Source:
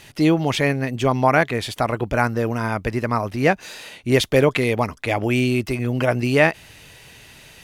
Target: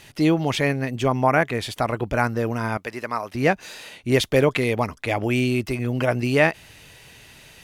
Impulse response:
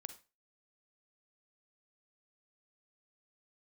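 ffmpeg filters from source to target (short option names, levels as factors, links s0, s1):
-filter_complex "[0:a]asettb=1/sr,asplit=3[s0][s1][s2];[s0]atrim=end=1.084[s3];[s1]atrim=start=1.08:end=1.5,asetpts=PTS-STARTPTS,afade=t=in:d=0.004:c=qsin,afade=t=out:st=0.416:d=0.004:c=qsin,equalizer=f=4100:w=3:g=-14[s4];[s2]atrim=start=1.496[s5];[s3][s4]acrossfade=d=0.004:c1=hsin:c2=qsin[s6];[s6][s5]acrossfade=d=0.004:c1=qsin:c2=hsin,asettb=1/sr,asplit=3[s7][s8][s9];[s7]atrim=end=2.774[s10];[s8]atrim=start=2.77:end=3.35,asetpts=PTS-STARTPTS,afade=t=in:d=0.004:c=qsin,afade=t=out:st=0.576:d=0.004:c=qsin,highpass=f=670:p=1[s11];[s9]atrim=start=3.346[s12];[s10][s11]acrossfade=d=0.004:c1=hsin:c2=qsin[s13];[s13][s12]acrossfade=d=0.004:c1=qsin:c2=hsin,volume=0.794"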